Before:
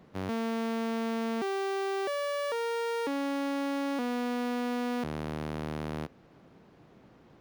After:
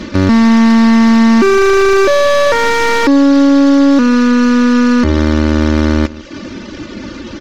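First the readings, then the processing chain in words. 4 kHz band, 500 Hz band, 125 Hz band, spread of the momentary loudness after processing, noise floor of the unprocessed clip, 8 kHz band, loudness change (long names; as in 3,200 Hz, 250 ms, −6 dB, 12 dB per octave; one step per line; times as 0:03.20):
+20.5 dB, +20.5 dB, +24.0 dB, 19 LU, −58 dBFS, +22.0 dB, +23.0 dB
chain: variable-slope delta modulation 32 kbit/s
reverb reduction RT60 0.65 s
parametric band 760 Hz −14 dB 0.66 octaves
comb filter 3.4 ms, depth 82%
slap from a distant wall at 27 metres, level −21 dB
boost into a limiter +33.5 dB
slew-rate limiting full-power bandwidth 540 Hz
level −1 dB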